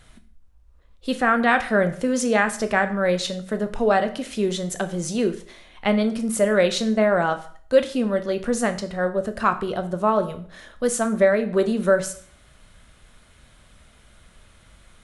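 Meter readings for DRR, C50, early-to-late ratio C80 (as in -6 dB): 8.0 dB, 14.0 dB, 17.0 dB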